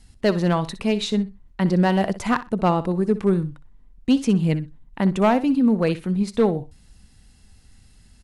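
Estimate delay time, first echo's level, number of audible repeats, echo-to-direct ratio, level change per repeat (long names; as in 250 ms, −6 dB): 62 ms, −15.0 dB, 2, −15.0 dB, −15.0 dB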